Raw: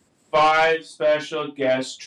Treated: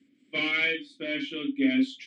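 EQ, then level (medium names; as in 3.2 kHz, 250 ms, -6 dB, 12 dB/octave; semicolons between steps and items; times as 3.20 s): vowel filter i; +8.0 dB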